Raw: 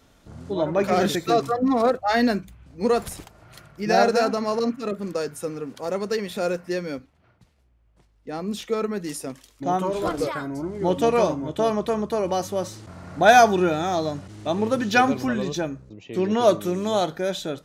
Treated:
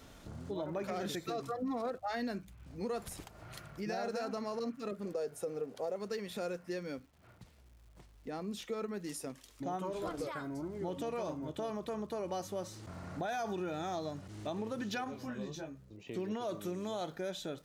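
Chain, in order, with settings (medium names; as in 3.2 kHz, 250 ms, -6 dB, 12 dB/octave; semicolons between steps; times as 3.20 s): 5.05–5.96 s: high-order bell 560 Hz +9.5 dB 1.2 oct; peak limiter -15 dBFS, peak gain reduction 11.5 dB; compression 2:1, threshold -51 dBFS, peak gain reduction 17 dB; crackle 290 per s -60 dBFS; 15.04–16.07 s: detune thickener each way 22 cents; trim +2 dB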